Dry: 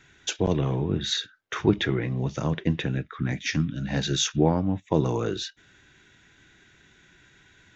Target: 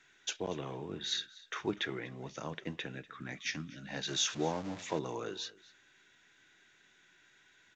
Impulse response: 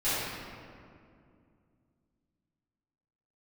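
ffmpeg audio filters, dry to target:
-filter_complex "[0:a]asettb=1/sr,asplit=3[a][b][c];[a]atrim=end=4.084[d];[b]atrim=start=4.08:end=4.99,asetpts=PTS-STARTPTS,afade=t=in:d=0.004:c=qsin,afade=t=out:st=0.906:d=0.004:c=qsin,aeval=exprs='val(0)+0.5*0.0299*sgn(val(0))':c=same[e];[c]atrim=start=4.986[f];[d][e]acrossfade=d=0.004:c1=hsin:c2=qsin[g];[g][f]acrossfade=d=0.004:c1=qsin:c2=hsin,highpass=f=580:p=1,asplit=2[h][i];[i]aecho=0:1:244:0.0891[j];[h][j]amix=inputs=2:normalize=0,volume=-7.5dB" -ar 16000 -c:a pcm_mulaw

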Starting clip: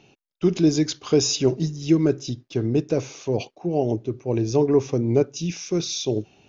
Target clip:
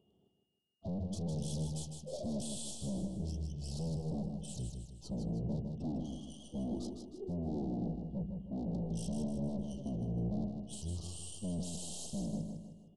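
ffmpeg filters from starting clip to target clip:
-filter_complex "[0:a]afftdn=nr=19:nf=-36,highpass=f=1.1k:p=1,acompressor=threshold=-43dB:ratio=2,aeval=exprs='(tanh(316*val(0)+0.2)-tanh(0.2))/316':c=same,aeval=exprs='val(0)+0.000282*sin(2*PI*5700*n/s)':c=same,asuperstop=centerf=3600:order=8:qfactor=0.54,asplit=2[a][b];[b]aecho=0:1:78|156|234|312|390:0.501|0.221|0.097|0.0427|0.0188[c];[a][c]amix=inputs=2:normalize=0,asetrate=22050,aresample=44100,volume=14dB"

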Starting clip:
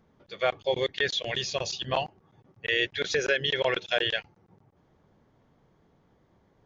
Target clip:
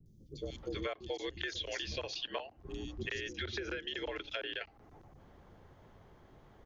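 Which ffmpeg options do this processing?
-filter_complex "[0:a]asettb=1/sr,asplit=3[a][b][c];[a]atrim=end=1.964[d];[b]atrim=start=1.96:end=4.18,asetpts=PTS-STARTPTS,afade=t=in:d=0.004:c=qsin,afade=t=out:st=2.216:d=0.004:c=qsin,acrossover=split=340[e][f];[f]acompressor=threshold=-36dB:ratio=2.5[g];[e][g]amix=inputs=2:normalize=0[h];[c]atrim=start=4.176[i];[d][h]acrossfade=d=0.004:c1=hsin:c2=qsin[j];[j][i]acrossfade=d=0.004:c1=qsin:c2=hsin,acrossover=split=330|5400[k][l][m];[m]adelay=60[n];[l]adelay=430[o];[k][o][n]amix=inputs=3:normalize=0,afreqshift=-56,bandreject=f=60:t=h:w=6,bandreject=f=120:t=h:w=6,bandreject=f=180:t=h:w=6,bandreject=f=240:t=h:w=6,bandreject=f=300:t=h:w=6,acompressor=threshold=-43dB:ratio=10,volume=7dB"

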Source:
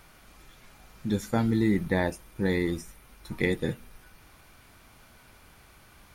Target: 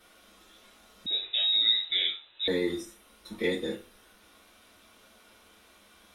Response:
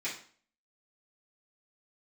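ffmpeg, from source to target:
-filter_complex "[1:a]atrim=start_sample=2205,asetrate=70560,aresample=44100[a];[0:a][a]afir=irnorm=-1:irlink=0,asettb=1/sr,asplit=3[b][c][d];[b]atrim=end=1.064[e];[c]atrim=start=1.06:end=2.48,asetpts=PTS-STARTPTS,afade=t=in:d=0.004:c=qsin,afade=t=out:st=1.416:d=0.004:c=qsin,lowpass=f=3.4k:t=q:w=0.5098,lowpass=f=3.4k:t=q:w=0.6013,lowpass=f=3.4k:t=q:w=0.9,lowpass=f=3.4k:t=q:w=2.563,afreqshift=-4000[f];[d]atrim=start=2.476[g];[e][f]acrossfade=d=0.004:c1=hsin:c2=qsin[h];[h][g]acrossfade=d=0.004:c1=qsin:c2=hsin"

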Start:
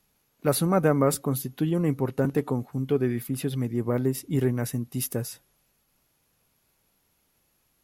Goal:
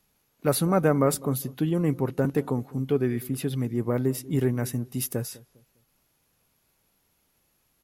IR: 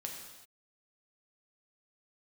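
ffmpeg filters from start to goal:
-filter_complex "[0:a]asplit=2[a][b];[b]adelay=202,lowpass=f=890:p=1,volume=-20.5dB,asplit=2[c][d];[d]adelay=202,lowpass=f=890:p=1,volume=0.37,asplit=2[e][f];[f]adelay=202,lowpass=f=890:p=1,volume=0.37[g];[a][c][e][g]amix=inputs=4:normalize=0"

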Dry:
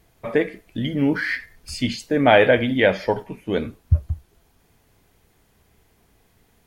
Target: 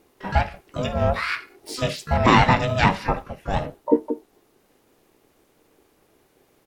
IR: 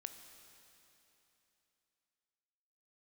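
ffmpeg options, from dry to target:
-filter_complex "[0:a]aeval=exprs='val(0)*sin(2*PI*380*n/s)':c=same,asplit=3[a][b][c];[b]asetrate=35002,aresample=44100,atempo=1.25992,volume=-9dB[d];[c]asetrate=88200,aresample=44100,atempo=0.5,volume=-11dB[e];[a][d][e]amix=inputs=3:normalize=0,volume=1dB"

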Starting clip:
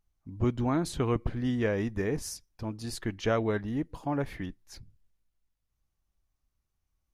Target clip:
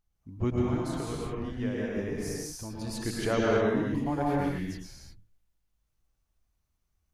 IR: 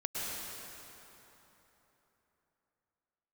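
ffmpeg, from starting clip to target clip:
-filter_complex "[0:a]asplit=3[a][b][c];[a]afade=t=out:st=0.55:d=0.02[d];[b]acompressor=threshold=-36dB:ratio=2.5,afade=t=in:st=0.55:d=0.02,afade=t=out:st=2.7:d=0.02[e];[c]afade=t=in:st=2.7:d=0.02[f];[d][e][f]amix=inputs=3:normalize=0[g];[1:a]atrim=start_sample=2205,afade=t=out:st=0.42:d=0.01,atrim=end_sample=18963[h];[g][h]afir=irnorm=-1:irlink=0"

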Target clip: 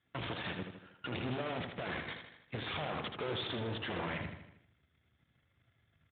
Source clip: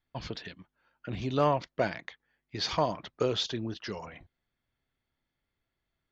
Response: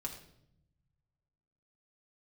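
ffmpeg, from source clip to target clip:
-af "equalizer=f=910:w=4.3:g=-7,aeval=exprs='(tanh(141*val(0)+0.1)-tanh(0.1))/141':c=same,acompressor=threshold=-52dB:ratio=3,asubboost=boost=3.5:cutoff=140,aeval=exprs='0.0112*(cos(1*acos(clip(val(0)/0.0112,-1,1)))-cos(1*PI/2))+0.000355*(cos(4*acos(clip(val(0)/0.0112,-1,1)))-cos(4*PI/2))+0.00501*(cos(8*acos(clip(val(0)/0.0112,-1,1)))-cos(8*PI/2))':c=same,aecho=1:1:79|158|237|316|395|474:0.473|0.246|0.128|0.0665|0.0346|0.018,volume=8.5dB" -ar 8000 -c:a libspeex -b:a 24k

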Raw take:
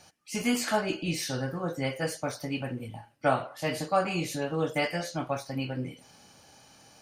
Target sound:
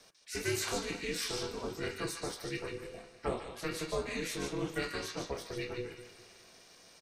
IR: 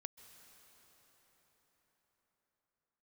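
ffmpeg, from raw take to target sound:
-filter_complex "[0:a]afreqshift=-380,asplit=2[a][b];[b]aderivative[c];[1:a]atrim=start_sample=2205,lowpass=5.1k,adelay=146[d];[c][d]afir=irnorm=-1:irlink=0,volume=9dB[e];[a][e]amix=inputs=2:normalize=0,acrossover=split=230|3000[f][g][h];[g]acompressor=threshold=-35dB:ratio=2.5[i];[f][i][h]amix=inputs=3:normalize=0,aeval=exprs='val(0)*sin(2*PI*240*n/s)':c=same,lowshelf=f=170:g=-11.5,asplit=2[j][k];[k]adelay=206,lowpass=f=2k:p=1,volume=-14dB,asplit=2[l][m];[m]adelay=206,lowpass=f=2k:p=1,volume=0.42,asplit=2[n][o];[o]adelay=206,lowpass=f=2k:p=1,volume=0.42,asplit=2[p][q];[q]adelay=206,lowpass=f=2k:p=1,volume=0.42[r];[j][l][n][p][r]amix=inputs=5:normalize=0"

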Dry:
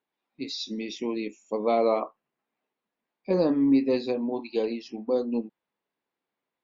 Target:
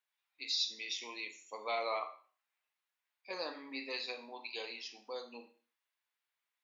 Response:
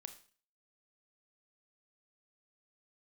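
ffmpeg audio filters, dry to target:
-filter_complex "[0:a]highpass=1.5k[a];[1:a]atrim=start_sample=2205,afade=t=out:st=0.39:d=0.01,atrim=end_sample=17640[b];[a][b]afir=irnorm=-1:irlink=0,volume=6.5dB"

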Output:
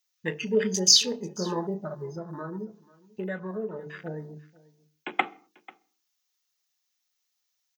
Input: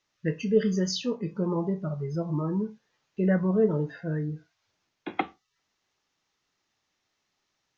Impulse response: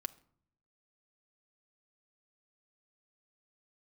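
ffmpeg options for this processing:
-filter_complex "[0:a]aemphasis=mode=production:type=riaa,afwtdn=0.01,highshelf=f=3.9k:g=6,bandreject=f=50:t=h:w=6,bandreject=f=100:t=h:w=6,bandreject=f=150:t=h:w=6,bandreject=f=200:t=h:w=6,bandreject=f=250:t=h:w=6,bandreject=f=300:t=h:w=6,bandreject=f=350:t=h:w=6,bandreject=f=400:t=h:w=6,bandreject=f=450:t=h:w=6,asettb=1/sr,asplit=3[a][b][c];[a]atrim=end=2.114[d];[b]atrim=start=2.11:end=3.99,asetpts=PTS-STARTPTS,afade=t=in:d=0.004:c=qsin,afade=t=out:st=1.876:d=0.004:c=qsin,acompressor=threshold=-38dB:ratio=2.5[e];[c]atrim=start=3.986[f];[d][e]acrossfade=d=0.004:c1=hsin:c2=qsin[g];[g][f]acrossfade=d=0.004:c1=qsin:c2=hsin,aecho=1:1:491:0.075,asplit=2[h][i];[1:a]atrim=start_sample=2205,afade=t=out:st=0.32:d=0.01,atrim=end_sample=14553[j];[i][j]afir=irnorm=-1:irlink=0,volume=6dB[k];[h][k]amix=inputs=2:normalize=0,volume=-5dB"

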